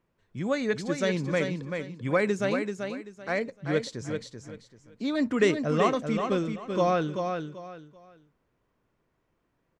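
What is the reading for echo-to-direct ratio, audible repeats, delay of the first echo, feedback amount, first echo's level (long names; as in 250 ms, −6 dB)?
−5.5 dB, 3, 386 ms, 26%, −6.0 dB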